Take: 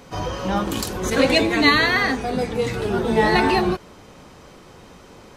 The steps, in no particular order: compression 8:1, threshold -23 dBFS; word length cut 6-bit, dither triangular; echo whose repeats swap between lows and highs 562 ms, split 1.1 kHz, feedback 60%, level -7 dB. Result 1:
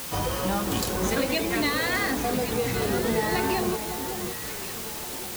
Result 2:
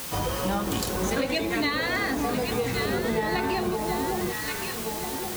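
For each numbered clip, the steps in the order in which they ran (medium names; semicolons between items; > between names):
compression > echo whose repeats swap between lows and highs > word length cut; echo whose repeats swap between lows and highs > word length cut > compression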